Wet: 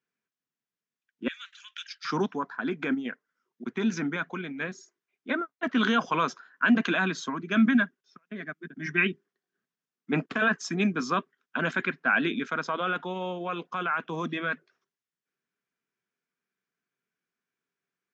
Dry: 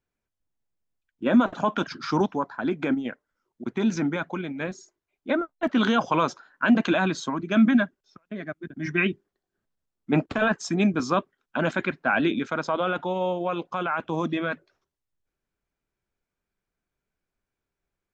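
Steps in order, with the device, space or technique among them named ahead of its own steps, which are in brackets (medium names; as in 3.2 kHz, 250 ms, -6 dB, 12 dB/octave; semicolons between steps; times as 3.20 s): television speaker (cabinet simulation 170–6800 Hz, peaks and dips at 200 Hz -3 dB, 320 Hz -7 dB, 580 Hz -10 dB, 840 Hz -8 dB, 1.7 kHz +3 dB, 4.2 kHz -4 dB); 1.28–2.05 s: inverse Chebyshev band-stop 170–660 Hz, stop band 70 dB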